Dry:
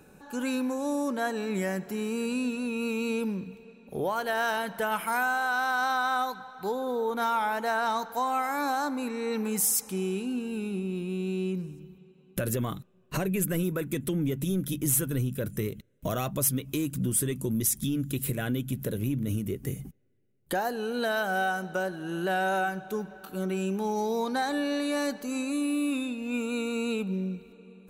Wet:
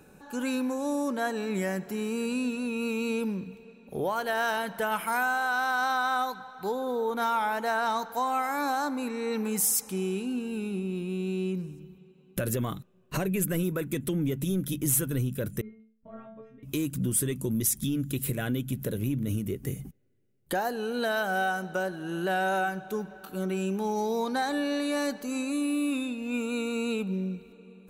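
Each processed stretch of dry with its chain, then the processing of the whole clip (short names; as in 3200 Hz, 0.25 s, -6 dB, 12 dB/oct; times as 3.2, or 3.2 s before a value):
15.61–16.63 LPF 2000 Hz 24 dB/oct + metallic resonator 220 Hz, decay 0.47 s, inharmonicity 0.002
whole clip: dry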